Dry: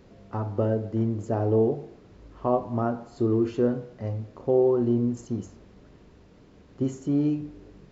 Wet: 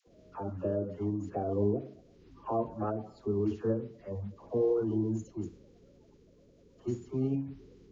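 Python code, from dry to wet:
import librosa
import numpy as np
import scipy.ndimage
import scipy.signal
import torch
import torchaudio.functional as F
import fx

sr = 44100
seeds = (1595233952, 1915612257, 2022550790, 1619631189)

y = fx.spec_quant(x, sr, step_db=30)
y = fx.dispersion(y, sr, late='lows', ms=73.0, hz=720.0)
y = fx.pitch_keep_formants(y, sr, semitones=-1.5)
y = y * 10.0 ** (-6.5 / 20.0)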